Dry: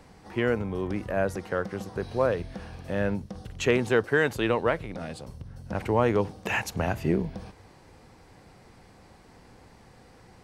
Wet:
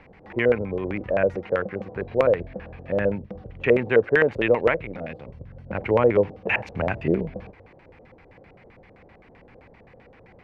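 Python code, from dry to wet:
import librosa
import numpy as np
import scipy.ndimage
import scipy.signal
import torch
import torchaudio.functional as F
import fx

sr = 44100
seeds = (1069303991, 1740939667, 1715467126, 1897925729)

y = fx.high_shelf(x, sr, hz=4900.0, db=-9.5, at=(1.65, 4.03))
y = fx.filter_lfo_lowpass(y, sr, shape='square', hz=7.7, low_hz=550.0, high_hz=2300.0, q=3.3)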